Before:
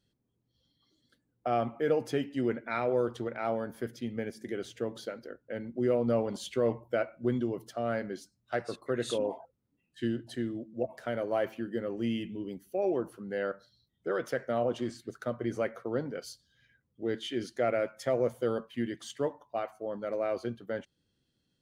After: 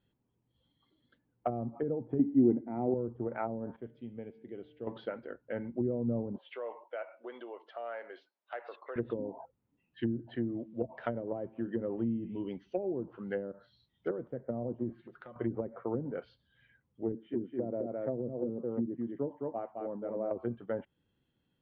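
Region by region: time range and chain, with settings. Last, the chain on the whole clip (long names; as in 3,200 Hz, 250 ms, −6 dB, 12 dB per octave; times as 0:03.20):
0:02.19–0:02.94: hollow resonant body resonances 300/750/2,000 Hz, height 12 dB, ringing for 20 ms + one half of a high-frequency compander encoder only
0:03.76–0:04.87: low-pass filter 2,500 Hz 6 dB per octave + parametric band 1,500 Hz −12 dB 1.5 octaves + tuned comb filter 150 Hz, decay 1.5 s
0:06.38–0:08.96: high-pass filter 470 Hz 24 dB per octave + downward compressor 2 to 1, threshold −44 dBFS
0:10.59–0:14.41: low-pass with resonance 6,000 Hz, resonance Q 6.8 + high-shelf EQ 2,700 Hz +11.5 dB
0:14.92–0:15.36: comb filter 5.6 ms, depth 66% + downward compressor 12 to 1, threshold −46 dBFS
0:17.12–0:20.31: resonant band-pass 240 Hz, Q 0.77 + single-tap delay 213 ms −4 dB
whole clip: treble cut that deepens with the level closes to 300 Hz, closed at −27.5 dBFS; Butterworth low-pass 3,300 Hz 36 dB per octave; parametric band 910 Hz +6.5 dB 0.5 octaves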